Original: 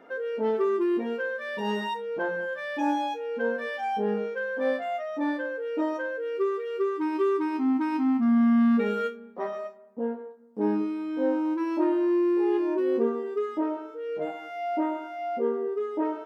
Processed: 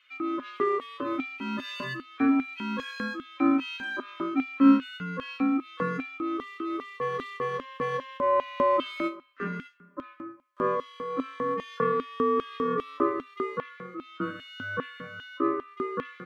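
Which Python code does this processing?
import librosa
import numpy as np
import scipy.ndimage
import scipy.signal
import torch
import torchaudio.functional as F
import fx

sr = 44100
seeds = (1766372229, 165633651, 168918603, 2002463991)

y = x * np.sin(2.0 * np.pi * 800.0 * np.arange(len(x)) / sr)
y = fx.filter_lfo_highpass(y, sr, shape='square', hz=2.5, low_hz=210.0, high_hz=3000.0, q=1.9)
y = fx.small_body(y, sr, hz=(260.0, 3200.0), ring_ms=90, db=15)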